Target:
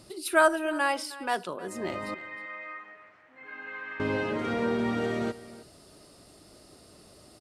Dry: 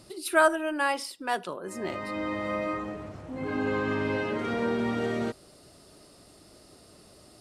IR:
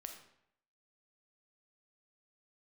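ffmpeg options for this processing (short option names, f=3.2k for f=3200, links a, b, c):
-filter_complex "[0:a]asettb=1/sr,asplit=3[a][b][c];[a]atrim=end=2.144[d];[b]atrim=start=2.14:end=4,asetpts=PTS-STARTPTS,afade=t=in:d=0.004:c=qsin,afade=t=out:st=1.856:d=0.004:c=qsin,bandpass=f=1.9k:t=q:w=2.8:csg=0[e];[c]atrim=start=3.996[f];[d][e]acrossfade=d=0.004:c1=hsin:c2=qsin[g];[g][f]acrossfade=d=0.004:c1=qsin:c2=hsin,aecho=1:1:313:0.133"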